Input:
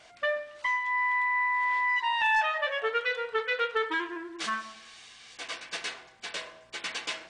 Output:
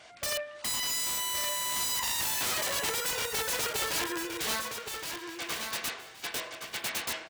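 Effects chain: rattle on loud lows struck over -53 dBFS, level -39 dBFS; integer overflow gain 28.5 dB; high-pass 47 Hz; on a send: feedback delay 1119 ms, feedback 19%, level -6.5 dB; on the sum: trim +2 dB

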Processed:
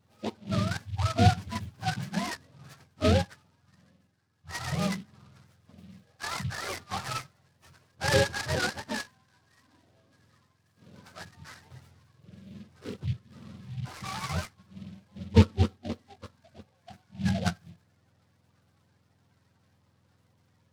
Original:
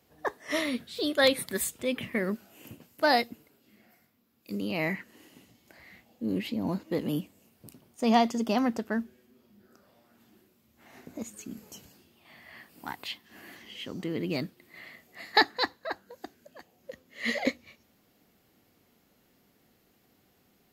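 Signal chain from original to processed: spectrum inverted on a logarithmic axis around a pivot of 620 Hz; delay time shaken by noise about 2.9 kHz, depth 0.079 ms

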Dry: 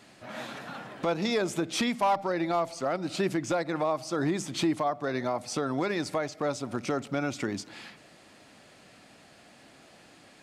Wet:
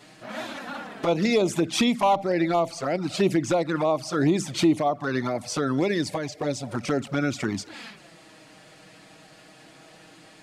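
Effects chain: 5.86–6.69 s: peaking EQ 1.3 kHz -13.5 dB 0.41 oct; touch-sensitive flanger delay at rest 7.2 ms, full sweep at -23.5 dBFS; trim +7.5 dB

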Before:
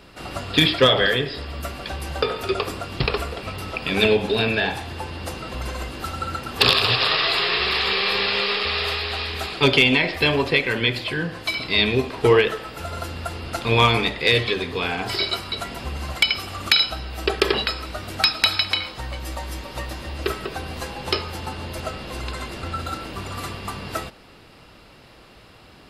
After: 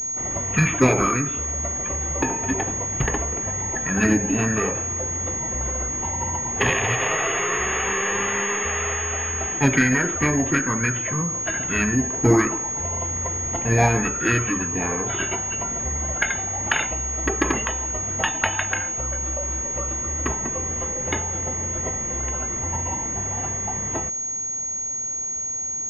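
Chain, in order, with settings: formant shift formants -6 st; distance through air 300 m; class-D stage that switches slowly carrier 6.6 kHz

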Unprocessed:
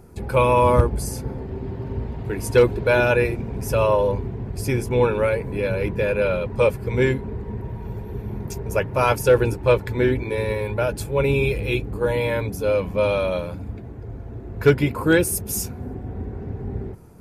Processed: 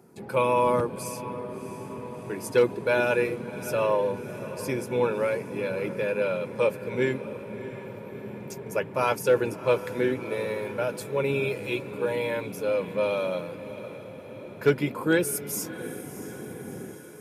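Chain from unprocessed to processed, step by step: high-pass 150 Hz 24 dB/octave; on a send: echo that smears into a reverb 665 ms, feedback 61%, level -14 dB; on the sum: trim -5.5 dB

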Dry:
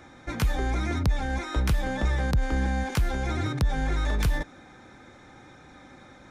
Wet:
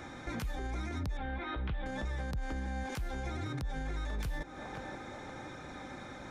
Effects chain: 1.17–1.86 s: Chebyshev low-pass 3.5 kHz, order 4; on a send: band-passed feedback delay 523 ms, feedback 69%, band-pass 680 Hz, level -15.5 dB; on the sum: compression 6:1, threshold -36 dBFS, peak gain reduction 16 dB; peak limiter -33 dBFS, peak gain reduction 9 dB; trim +3.5 dB

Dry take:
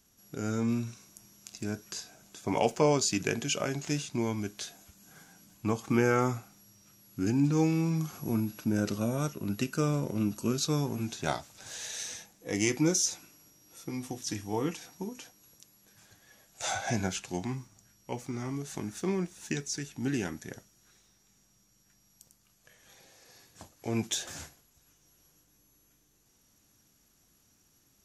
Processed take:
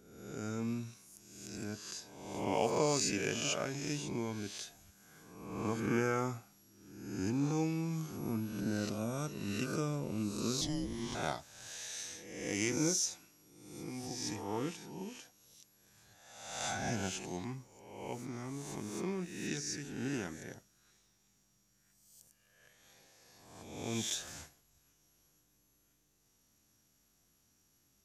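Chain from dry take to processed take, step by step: reverse spectral sustain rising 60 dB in 1.02 s; 10.61–11.15 s: frequency shift -460 Hz; trim -8 dB

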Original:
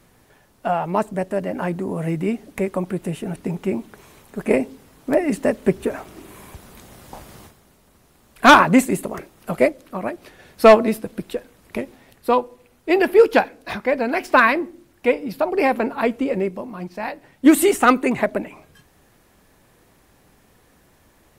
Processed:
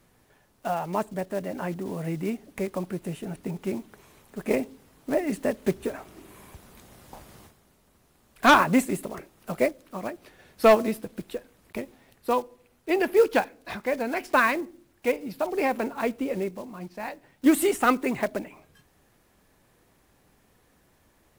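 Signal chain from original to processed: block-companded coder 5-bit; trim -7 dB

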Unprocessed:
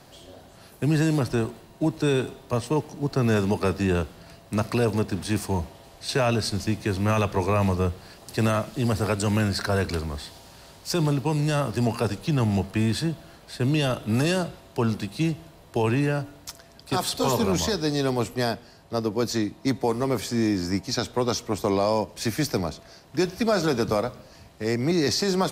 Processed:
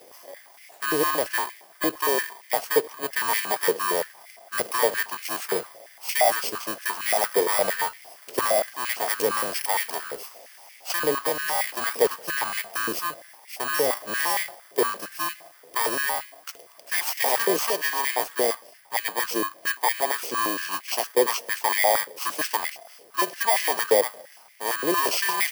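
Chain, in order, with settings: bit-reversed sample order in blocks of 32 samples; step-sequenced high-pass 8.7 Hz 460–2100 Hz

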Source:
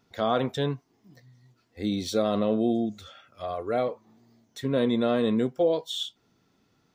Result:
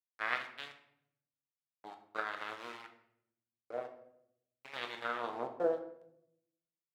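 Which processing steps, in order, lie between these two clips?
Bessel low-pass 6.4 kHz; feedback comb 52 Hz, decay 1.1 s, harmonics odd, mix 50%; power-law waveshaper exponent 3; word length cut 8-bit, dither none; wah-wah 0.48 Hz 560–2200 Hz, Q 2.1; simulated room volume 170 m³, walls mixed, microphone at 0.52 m; trim +11 dB

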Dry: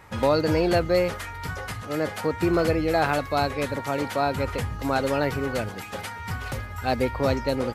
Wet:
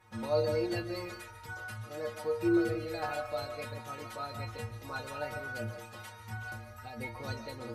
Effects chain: 6.32–6.97 s: compression 6:1, threshold -28 dBFS, peak gain reduction 9 dB; inharmonic resonator 110 Hz, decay 0.44 s, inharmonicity 0.008; reverberation RT60 0.30 s, pre-delay 105 ms, DRR 10 dB

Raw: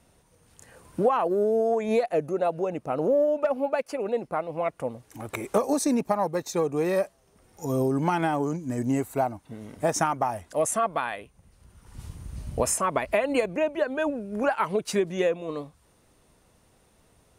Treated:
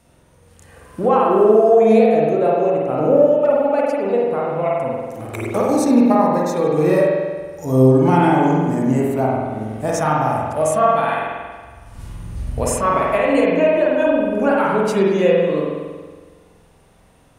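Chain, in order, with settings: harmonic-percussive split harmonic +6 dB; spring tank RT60 1.5 s, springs 46 ms, chirp 60 ms, DRR -4 dB

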